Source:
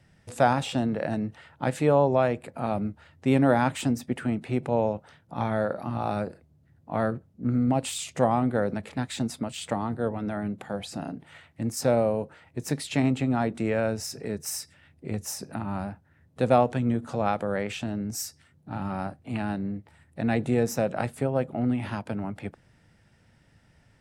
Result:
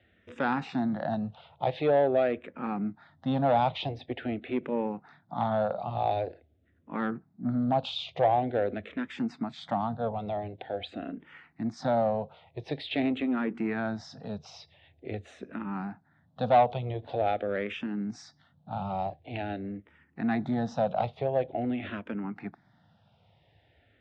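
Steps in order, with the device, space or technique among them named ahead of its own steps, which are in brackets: barber-pole phaser into a guitar amplifier (endless phaser -0.46 Hz; soft clip -18.5 dBFS, distortion -16 dB; speaker cabinet 78–3900 Hz, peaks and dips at 130 Hz -4 dB, 720 Hz +7 dB, 3600 Hz +7 dB)

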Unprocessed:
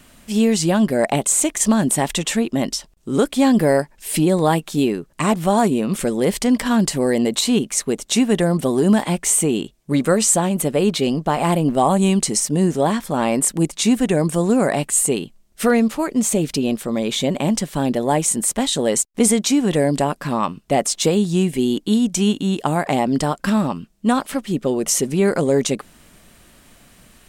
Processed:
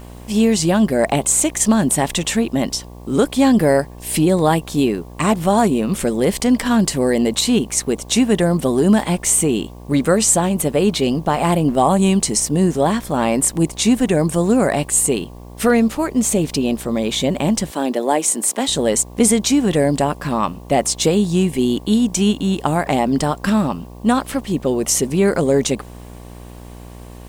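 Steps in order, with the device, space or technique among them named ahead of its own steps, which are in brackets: video cassette with head-switching buzz (buzz 60 Hz, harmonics 19, -38 dBFS -5 dB/oct; white noise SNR 39 dB); 17.71–18.68 HPF 250 Hz 24 dB/oct; gain +1.5 dB

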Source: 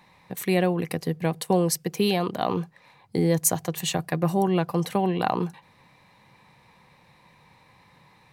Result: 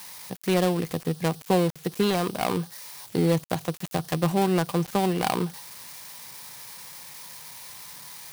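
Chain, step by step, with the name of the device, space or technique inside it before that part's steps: budget class-D amplifier (switching dead time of 0.21 ms; switching spikes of -25.5 dBFS)

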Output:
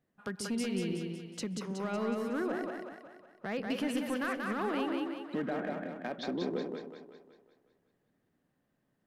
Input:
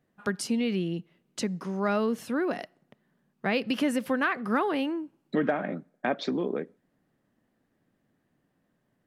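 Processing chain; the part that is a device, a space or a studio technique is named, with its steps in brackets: 2.08–3.67 resonant high shelf 2200 Hz -6 dB, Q 1.5; limiter into clipper (limiter -19 dBFS, peak gain reduction 5.5 dB; hard clip -21.5 dBFS, distortion -24 dB); split-band echo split 430 Hz, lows 0.137 s, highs 0.185 s, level -3 dB; gain -6.5 dB

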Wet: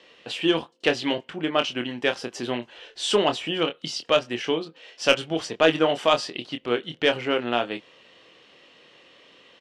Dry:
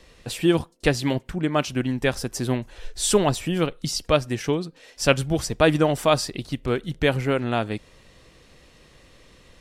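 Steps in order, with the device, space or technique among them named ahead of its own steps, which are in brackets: intercom (BPF 310–4300 Hz; bell 3000 Hz +9.5 dB 0.32 oct; soft clip -5.5 dBFS, distortion -20 dB; doubler 25 ms -7.5 dB)

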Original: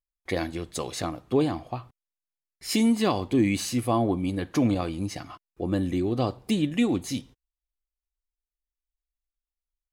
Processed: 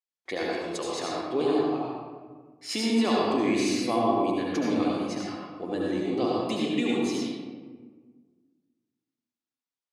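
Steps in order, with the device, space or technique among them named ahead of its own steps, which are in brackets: supermarket ceiling speaker (BPF 290–6200 Hz; reverb RT60 1.5 s, pre-delay 68 ms, DRR -4 dB); high shelf 4700 Hz +5.5 dB; gain -4 dB

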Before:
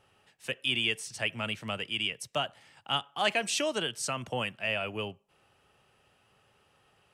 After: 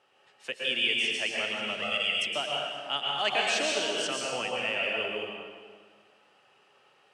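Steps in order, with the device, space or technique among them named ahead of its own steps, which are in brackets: supermarket ceiling speaker (BPF 320–6600 Hz; reverb RT60 1.6 s, pre-delay 0.11 s, DRR -3 dB); 1.82–2.27 comb 1.5 ms, depth 90%; dynamic EQ 1100 Hz, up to -4 dB, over -39 dBFS, Q 0.87

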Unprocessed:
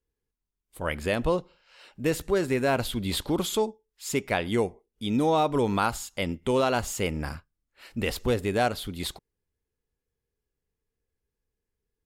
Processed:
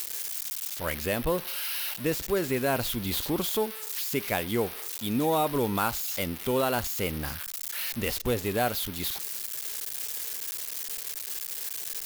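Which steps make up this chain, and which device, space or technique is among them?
budget class-D amplifier (switching dead time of 0.068 ms; switching spikes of -17 dBFS); gain -2.5 dB

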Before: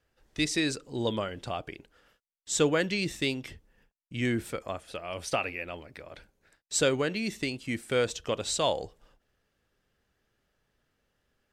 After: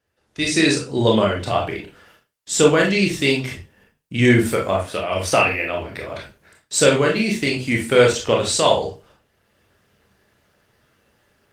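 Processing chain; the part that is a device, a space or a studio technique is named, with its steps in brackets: far-field microphone of a smart speaker (reverb RT60 0.30 s, pre-delay 23 ms, DRR -1 dB; HPF 82 Hz 12 dB/oct; AGC gain up to 14 dB; Opus 24 kbps 48000 Hz)

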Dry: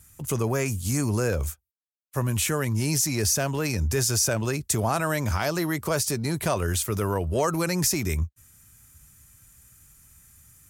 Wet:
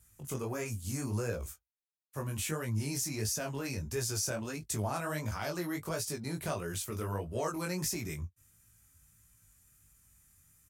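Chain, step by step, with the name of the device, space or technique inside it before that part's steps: double-tracked vocal (doubler 19 ms -13.5 dB; chorus 1.5 Hz, delay 17 ms, depth 5.9 ms); gain -7.5 dB

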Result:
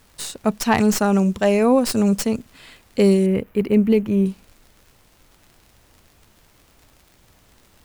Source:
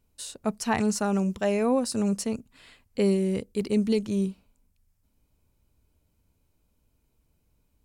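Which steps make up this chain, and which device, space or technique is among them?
record under a worn stylus (tracing distortion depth 0.051 ms; crackle; pink noise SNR 35 dB); 3.26–4.26 band shelf 5800 Hz -15 dB; gain +8 dB

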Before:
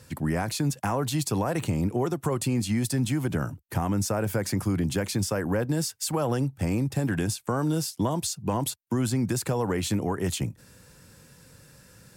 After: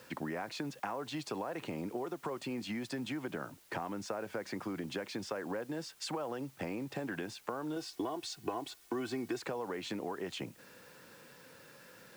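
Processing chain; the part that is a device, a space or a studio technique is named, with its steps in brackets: baby monitor (BPF 320–3300 Hz; compressor, threshold -38 dBFS, peak gain reduction 13.5 dB; white noise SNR 23 dB); 7.76–9.42 comb 2.7 ms, depth 69%; gain +2 dB

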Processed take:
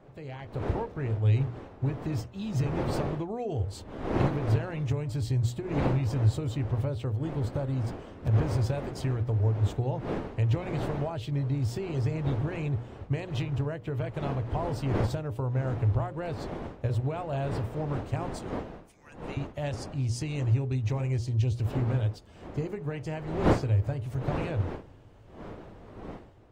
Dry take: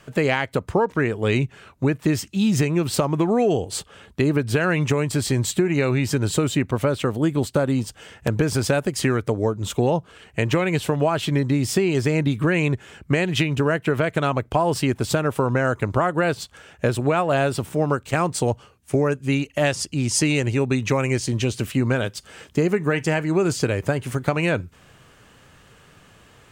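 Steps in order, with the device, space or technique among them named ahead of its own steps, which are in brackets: notches 60/120/180/240/300/360/420/480/540/600 Hz; 18.29–19.37 HPF 1500 Hz 24 dB/oct; EQ curve 110 Hz 0 dB, 180 Hz -21 dB, 250 Hz -19 dB, 870 Hz -17 dB, 1300 Hz -26 dB, 4500 Hz -20 dB, 9900 Hz -28 dB, 14000 Hz -24 dB; smartphone video outdoors (wind noise 500 Hz -42 dBFS; AGC gain up to 10 dB; gain -5.5 dB; AAC 48 kbps 48000 Hz)

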